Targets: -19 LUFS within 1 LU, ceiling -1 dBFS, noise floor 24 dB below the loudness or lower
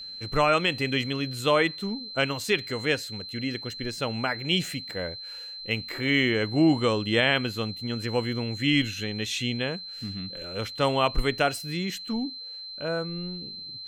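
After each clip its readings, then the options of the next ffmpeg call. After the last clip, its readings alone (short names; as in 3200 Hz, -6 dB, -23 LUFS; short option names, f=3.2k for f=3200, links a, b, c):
steady tone 4100 Hz; tone level -37 dBFS; loudness -27.0 LUFS; peak -10.0 dBFS; loudness target -19.0 LUFS
-> -af "bandreject=f=4.1k:w=30"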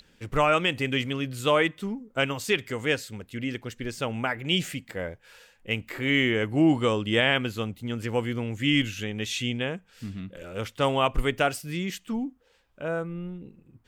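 steady tone none; loudness -27.0 LUFS; peak -10.5 dBFS; loudness target -19.0 LUFS
-> -af "volume=8dB"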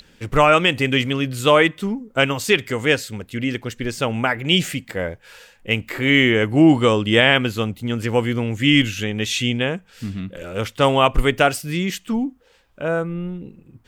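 loudness -19.0 LUFS; peak -2.5 dBFS; noise floor -55 dBFS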